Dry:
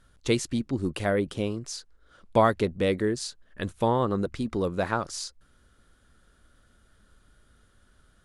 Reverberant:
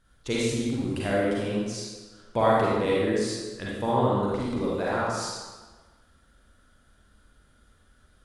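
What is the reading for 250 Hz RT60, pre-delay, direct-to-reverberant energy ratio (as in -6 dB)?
1.3 s, 36 ms, -6.5 dB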